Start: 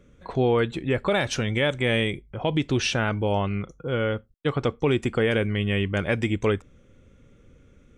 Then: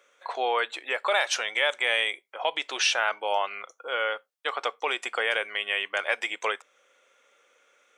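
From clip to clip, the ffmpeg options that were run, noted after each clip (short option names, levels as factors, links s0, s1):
-filter_complex "[0:a]highpass=f=660:w=0.5412,highpass=f=660:w=1.3066,asplit=2[s0][s1];[s1]alimiter=limit=0.0891:level=0:latency=1:release=384,volume=0.75[s2];[s0][s2]amix=inputs=2:normalize=0"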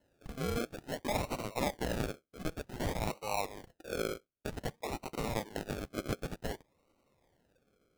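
-af "acrusher=samples=37:mix=1:aa=0.000001:lfo=1:lforange=22.2:lforate=0.54,volume=0.355"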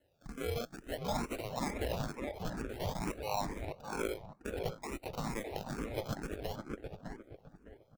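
-filter_complex "[0:a]asoftclip=type=tanh:threshold=0.0891,asplit=2[s0][s1];[s1]adelay=608,lowpass=f=1900:p=1,volume=0.708,asplit=2[s2][s3];[s3]adelay=608,lowpass=f=1900:p=1,volume=0.3,asplit=2[s4][s5];[s5]adelay=608,lowpass=f=1900:p=1,volume=0.3,asplit=2[s6][s7];[s7]adelay=608,lowpass=f=1900:p=1,volume=0.3[s8];[s2][s4][s6][s8]amix=inputs=4:normalize=0[s9];[s0][s9]amix=inputs=2:normalize=0,asplit=2[s10][s11];[s11]afreqshift=2.2[s12];[s10][s12]amix=inputs=2:normalize=1,volume=1.12"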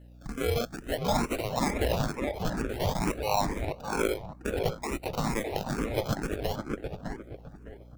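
-af "aeval=exprs='val(0)+0.00126*(sin(2*PI*60*n/s)+sin(2*PI*2*60*n/s)/2+sin(2*PI*3*60*n/s)/3+sin(2*PI*4*60*n/s)/4+sin(2*PI*5*60*n/s)/5)':c=same,volume=2.66"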